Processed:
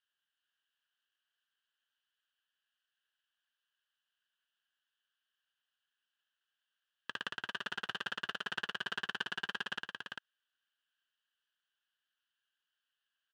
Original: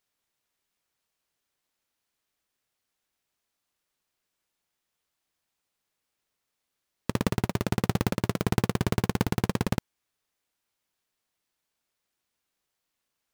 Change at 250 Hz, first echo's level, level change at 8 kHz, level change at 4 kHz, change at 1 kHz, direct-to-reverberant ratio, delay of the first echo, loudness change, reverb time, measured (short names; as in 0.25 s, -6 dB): -27.0 dB, -4.5 dB, -17.5 dB, 0.0 dB, -9.5 dB, none, 0.395 s, -11.0 dB, none